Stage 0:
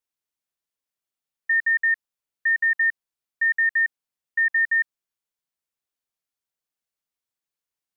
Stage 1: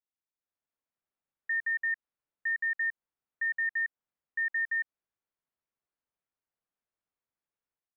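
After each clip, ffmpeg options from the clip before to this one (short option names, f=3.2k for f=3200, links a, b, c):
-af "lowpass=1.8k,alimiter=level_in=2.5dB:limit=-24dB:level=0:latency=1:release=137,volume=-2.5dB,dynaudnorm=f=350:g=3:m=9dB,volume=-8.5dB"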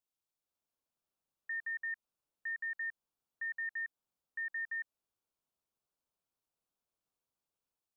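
-af "equalizer=f=1.9k:w=2.5:g=-11,volume=2dB"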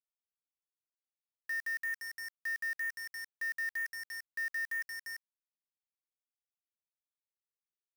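-af "aecho=1:1:346:0.316,acontrast=36,acrusher=bits=6:mix=0:aa=0.000001,volume=-2.5dB"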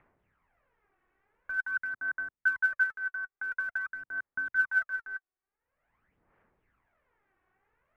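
-af "acompressor=mode=upward:threshold=-52dB:ratio=2.5,highpass=f=200:t=q:w=0.5412,highpass=f=200:t=q:w=1.307,lowpass=f=2.3k:t=q:w=0.5176,lowpass=f=2.3k:t=q:w=0.7071,lowpass=f=2.3k:t=q:w=1.932,afreqshift=-290,aphaser=in_gain=1:out_gain=1:delay=2.7:decay=0.65:speed=0.47:type=sinusoidal,volume=5dB"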